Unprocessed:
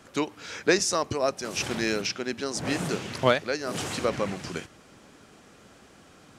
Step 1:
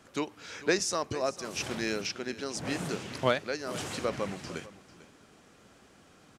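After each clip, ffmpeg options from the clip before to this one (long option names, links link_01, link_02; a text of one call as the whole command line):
ffmpeg -i in.wav -af "aecho=1:1:447:0.141,volume=-5dB" out.wav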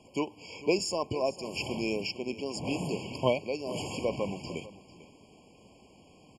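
ffmpeg -i in.wav -filter_complex "[0:a]lowpass=9500,asplit=2[link_01][link_02];[link_02]asoftclip=type=tanh:threshold=-26.5dB,volume=-11dB[link_03];[link_01][link_03]amix=inputs=2:normalize=0,afftfilt=real='re*eq(mod(floor(b*sr/1024/1100),2),0)':imag='im*eq(mod(floor(b*sr/1024/1100),2),0)':win_size=1024:overlap=0.75" out.wav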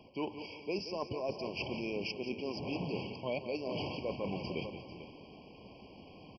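ffmpeg -i in.wav -af "areverse,acompressor=threshold=-38dB:ratio=6,areverse,aecho=1:1:176|352|528|704:0.282|0.116|0.0474|0.0194,aresample=11025,aresample=44100,volume=3.5dB" out.wav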